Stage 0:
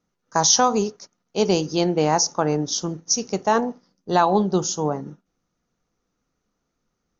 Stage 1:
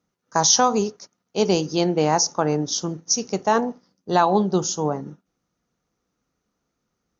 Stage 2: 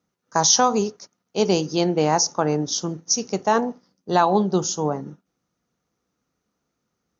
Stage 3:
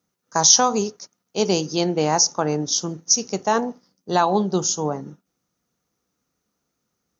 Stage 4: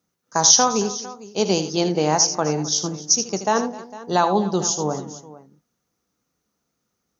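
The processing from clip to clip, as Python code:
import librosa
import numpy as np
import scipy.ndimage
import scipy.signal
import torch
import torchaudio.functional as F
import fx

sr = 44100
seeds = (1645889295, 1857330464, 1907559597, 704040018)

y1 = scipy.signal.sosfilt(scipy.signal.butter(2, 44.0, 'highpass', fs=sr, output='sos'), x)
y2 = scipy.signal.sosfilt(scipy.signal.butter(2, 56.0, 'highpass', fs=sr, output='sos'), y1)
y3 = fx.high_shelf(y2, sr, hz=5900.0, db=9.5)
y3 = y3 * 10.0 ** (-1.0 / 20.0)
y4 = fx.echo_multitap(y3, sr, ms=(79, 258, 454), db=(-10.5, -18.5, -18.0))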